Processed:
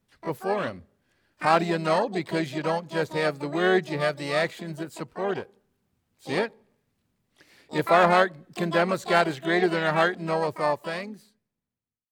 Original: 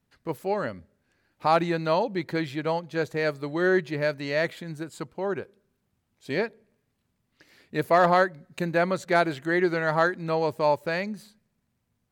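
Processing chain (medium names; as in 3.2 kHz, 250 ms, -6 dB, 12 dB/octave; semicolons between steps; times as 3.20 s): fade out at the end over 2.04 s; harmony voices +3 st -10 dB, +12 st -9 dB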